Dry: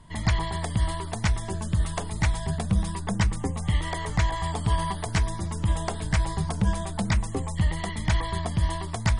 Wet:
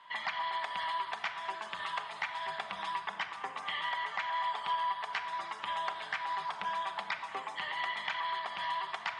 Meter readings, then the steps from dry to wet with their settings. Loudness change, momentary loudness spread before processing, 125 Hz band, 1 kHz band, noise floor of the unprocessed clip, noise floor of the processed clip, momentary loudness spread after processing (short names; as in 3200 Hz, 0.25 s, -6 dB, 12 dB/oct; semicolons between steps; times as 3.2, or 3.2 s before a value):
-8.0 dB, 3 LU, under -35 dB, 0.0 dB, -34 dBFS, -46 dBFS, 5 LU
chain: Chebyshev band-pass 1000–3100 Hz, order 2; compressor, threshold -39 dBFS, peak gain reduction 12 dB; shoebox room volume 3000 m³, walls mixed, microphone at 1.2 m; gain +5 dB